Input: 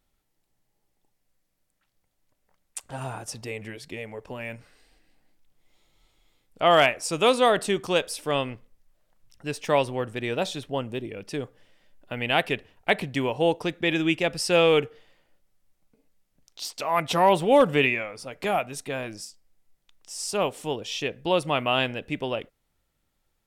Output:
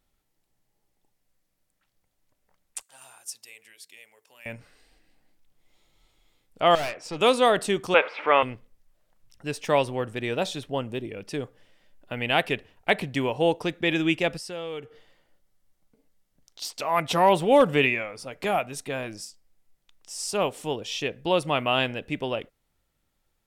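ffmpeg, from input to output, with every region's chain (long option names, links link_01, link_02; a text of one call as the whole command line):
ffmpeg -i in.wav -filter_complex "[0:a]asettb=1/sr,asplit=3[link_01][link_02][link_03];[link_01]atrim=end=2.824[link_04];[link_02]atrim=start=2.82:end=4.46,asetpts=PTS-STARTPTS,afade=type=in:duration=0.004:curve=qsin,afade=type=out:start_time=1.636:duration=0.004:curve=qsin,aderivative,bandreject=frequency=50:width_type=h:width=6,bandreject=frequency=100:width_type=h:width=6,bandreject=frequency=150:width_type=h:width=6,bandreject=frequency=200:width_type=h:width=6,bandreject=frequency=250:width_type=h:width=6,bandreject=frequency=300:width_type=h:width=6,bandreject=frequency=350:width_type=h:width=6,bandreject=frequency=400:width_type=h:width=6,bandreject=frequency=450:width_type=h:width=6[link_05];[link_03]atrim=start=4.456[link_06];[link_04][link_05]acrossfade=duration=0.004:curve1=hsin:curve2=qsin[link_07];[link_07][link_06]acrossfade=duration=0.004:curve1=qsin:curve2=hsin,asettb=1/sr,asplit=3[link_08][link_09][link_10];[link_08]atrim=end=6.754[link_11];[link_09]atrim=start=6.75:end=7.21,asetpts=PTS-STARTPTS,afade=type=in:duration=0.004:curve=qsin,afade=type=out:start_time=0.456:duration=0.004:curve=qsin,highpass=110,lowpass=4100,aeval=exprs='(tanh(22.4*val(0)+0.35)-tanh(0.35))/22.4':channel_layout=same[link_12];[link_10]atrim=start=7.206[link_13];[link_11][link_12]acrossfade=duration=0.004:curve1=hsin:curve2=qsin[link_14];[link_14][link_13]acrossfade=duration=0.004:curve1=qsin:curve2=hsin,asettb=1/sr,asplit=3[link_15][link_16][link_17];[link_15]atrim=end=7.944[link_18];[link_16]atrim=start=7.94:end=8.43,asetpts=PTS-STARTPTS,afade=type=in:duration=0.004:curve=qsin,afade=type=out:start_time=0.486:duration=0.004:curve=qsin,aeval=exprs='val(0)+0.5*0.015*sgn(val(0))':channel_layout=same,acontrast=27,highpass=470,equalizer=frequency=900:width_type=q:width=4:gain=6,equalizer=frequency=1300:width_type=q:width=4:gain=7,equalizer=frequency=2200:width_type=q:width=4:gain=9,lowpass=frequency=2600:width=0.5412,lowpass=frequency=2600:width=1.3066[link_19];[link_17]atrim=start=8.426[link_20];[link_18][link_19]acrossfade=duration=0.004:curve1=hsin:curve2=qsin[link_21];[link_21][link_20]acrossfade=duration=0.004:curve1=qsin:curve2=hsin,asettb=1/sr,asplit=3[link_22][link_23][link_24];[link_22]atrim=end=14.374[link_25];[link_23]atrim=start=14.37:end=16.62,asetpts=PTS-STARTPTS,afade=type=in:duration=0.004:curve=qsin,afade=type=out:start_time=2.246:duration=0.004:curve=qsin,bandreject=frequency=2500:width=12,acompressor=threshold=-44dB:ratio=2:attack=3.2:release=140:knee=1:detection=peak[link_26];[link_24]atrim=start=16.616[link_27];[link_25][link_26]acrossfade=duration=0.004:curve1=hsin:curve2=qsin[link_28];[link_28][link_27]acrossfade=duration=0.004:curve1=qsin:curve2=hsin" out.wav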